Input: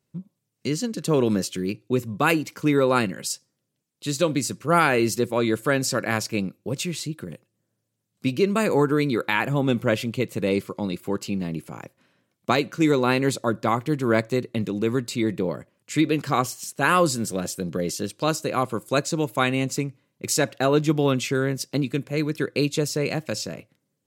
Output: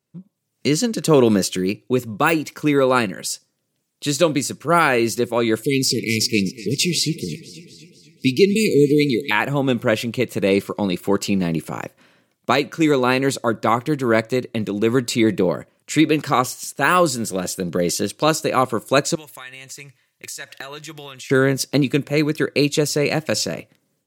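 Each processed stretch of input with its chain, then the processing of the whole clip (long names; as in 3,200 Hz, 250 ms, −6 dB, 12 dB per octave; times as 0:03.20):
0:05.63–0:09.31: linear-phase brick-wall band-stop 480–2,000 Hz + parametric band 4,900 Hz +8 dB 0.33 octaves + feedback echo with a swinging delay time 248 ms, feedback 62%, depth 114 cents, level −18.5 dB
0:19.15–0:21.30: guitar amp tone stack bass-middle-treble 10-0-10 + downward compressor 4 to 1, threshold −44 dBFS + hollow resonant body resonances 330/1,800 Hz, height 13 dB, ringing for 40 ms
whole clip: de-essing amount 45%; low-shelf EQ 180 Hz −6 dB; automatic gain control gain up to 12 dB; level −1 dB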